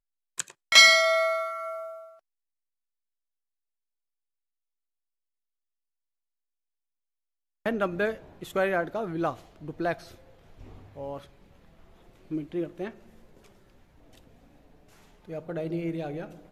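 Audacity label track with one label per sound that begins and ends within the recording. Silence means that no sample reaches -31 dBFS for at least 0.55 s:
7.660000	9.930000	sound
10.990000	11.170000	sound
12.320000	12.880000	sound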